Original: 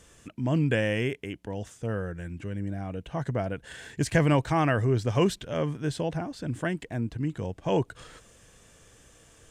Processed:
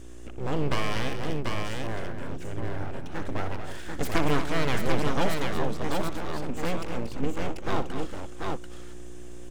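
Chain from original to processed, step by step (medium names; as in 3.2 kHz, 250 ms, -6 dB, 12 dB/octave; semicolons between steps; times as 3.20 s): 6.49–7.61 s: rippled EQ curve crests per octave 0.73, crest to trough 15 dB; hum 60 Hz, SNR 12 dB; full-wave rectifier; on a send: multi-tap echo 61/233/739 ms -12.5/-9.5/-3.5 dB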